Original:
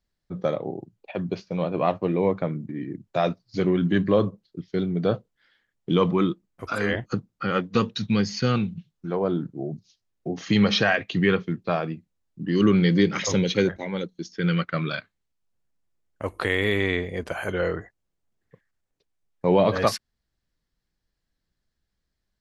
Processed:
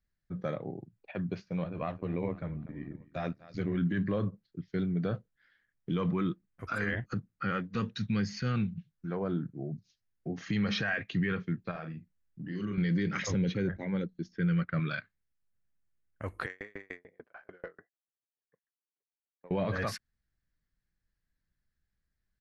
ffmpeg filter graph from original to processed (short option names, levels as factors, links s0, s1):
-filter_complex "[0:a]asettb=1/sr,asplit=3[s0][s1][s2];[s0]atrim=end=1.644[s3];[s1]atrim=start=1.64:end=3.75,asetpts=PTS-STARTPTS,afade=t=in:d=0.004:c=qsin,afade=t=out:st=2.106:d=0.004:c=qsin,aecho=1:1:245|490|735|980:0.0891|0.049|0.027|0.0148,atrim=end_sample=93051,tremolo=f=80:d=0.71[s4];[s2]atrim=start=3.746[s5];[s3][s4]acrossfade=d=0.004:c1=hsin:c2=qsin[s6];[s6][s5]acrossfade=d=0.004:c1=qsin:c2=hsin,asettb=1/sr,asplit=3[s7][s8][s9];[s7]atrim=end=11.714[s10];[s8]atrim=start=11.71:end=12.78,asetpts=PTS-STARTPTS,afade=t=in:d=0.004:c=qsin,afade=t=out:st=1.066:d=0.004:c=qsin,acompressor=threshold=0.0224:ratio=2.5:attack=3.2:release=140:knee=1:detection=peak,asplit=2[s11][s12];[s12]adelay=39,volume=0.531[s13];[s11][s13]amix=inputs=2:normalize=0,atrim=end_sample=47187[s14];[s9]atrim=start=12.776[s15];[s10][s14]acrossfade=d=0.004:c1=hsin:c2=qsin[s16];[s16][s15]acrossfade=d=0.004:c1=qsin:c2=hsin,asettb=1/sr,asplit=3[s17][s18][s19];[s17]atrim=end=13.304[s20];[s18]atrim=start=13.3:end=14.8,asetpts=PTS-STARTPTS,afade=t=in:d=0.004:c=qsin,afade=t=out:st=1.496:d=0.004:c=qsin,lowpass=5800,tiltshelf=f=860:g=4.5[s21];[s19]atrim=start=14.796[s22];[s20][s21]acrossfade=d=0.004:c1=hsin:c2=qsin[s23];[s23][s22]acrossfade=d=0.004:c1=qsin:c2=hsin,asettb=1/sr,asplit=3[s24][s25][s26];[s24]atrim=end=16.464[s27];[s25]atrim=start=16.46:end=19.51,asetpts=PTS-STARTPTS,afade=t=in:d=0.004:c=qsin,afade=t=out:st=3.046:d=0.004:c=qsin,highpass=410,adynamicsmooth=sensitivity=0.5:basefreq=1400,aeval=exprs='val(0)*pow(10,-38*if(lt(mod(6.8*n/s,1),2*abs(6.8)/1000),1-mod(6.8*n/s,1)/(2*abs(6.8)/1000),(mod(6.8*n/s,1)-2*abs(6.8)/1000)/(1-2*abs(6.8)/1000))/20)':c=same[s28];[s26]atrim=start=19.506[s29];[s27][s28]acrossfade=d=0.004:c1=hsin:c2=qsin[s30];[s30][s29]acrossfade=d=0.004:c1=qsin:c2=hsin,firequalizer=gain_entry='entry(120,0);entry(350,-7);entry(940,-8);entry(1600,1);entry(3100,-8)':delay=0.05:min_phase=1,alimiter=limit=0.1:level=0:latency=1:release=25,volume=0.75"